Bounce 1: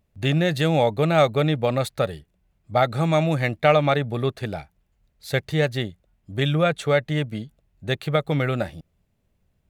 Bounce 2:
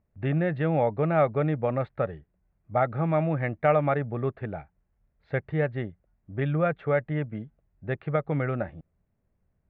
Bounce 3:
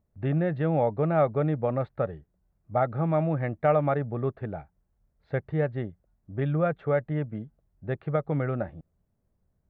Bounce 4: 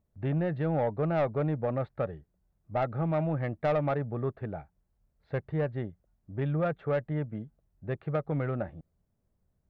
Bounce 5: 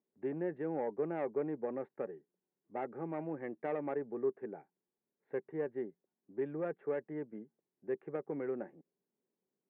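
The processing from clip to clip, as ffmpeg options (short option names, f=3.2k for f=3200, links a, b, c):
-af "lowpass=f=2k:w=0.5412,lowpass=f=2k:w=1.3066,volume=-4.5dB"
-af "equalizer=f=2.3k:t=o:w=1.2:g=-6.5"
-af "asoftclip=type=tanh:threshold=-18.5dB,volume=-2dB"
-af "highpass=f=230:w=0.5412,highpass=f=230:w=1.3066,equalizer=f=390:t=q:w=4:g=8,equalizer=f=640:t=q:w=4:g=-9,equalizer=f=1.3k:t=q:w=4:g=-10,lowpass=f=2.1k:w=0.5412,lowpass=f=2.1k:w=1.3066,volume=-5.5dB"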